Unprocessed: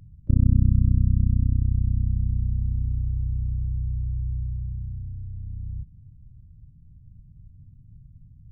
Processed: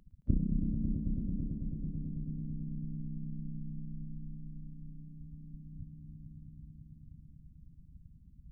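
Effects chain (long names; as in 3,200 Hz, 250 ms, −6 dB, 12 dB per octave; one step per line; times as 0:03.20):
harmonic-percussive split with one part muted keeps percussive
echo that builds up and dies away 110 ms, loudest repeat 5, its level −9 dB
level −1.5 dB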